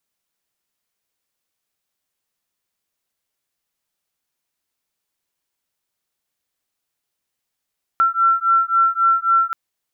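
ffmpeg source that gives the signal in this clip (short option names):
-f lavfi -i "aevalsrc='0.15*(sin(2*PI*1350*t)+sin(2*PI*1353.7*t))':d=1.53:s=44100"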